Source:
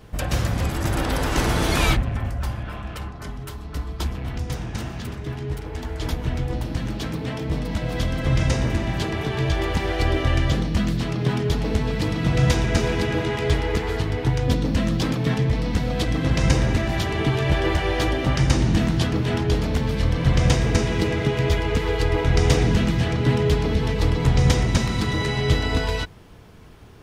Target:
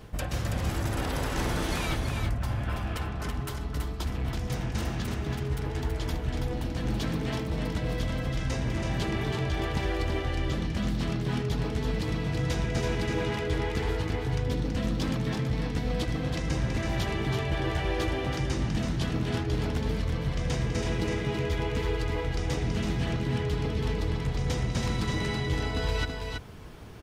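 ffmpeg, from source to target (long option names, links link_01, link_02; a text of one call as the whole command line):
ffmpeg -i in.wav -af "areverse,acompressor=threshold=-27dB:ratio=6,areverse,aecho=1:1:328:0.562" out.wav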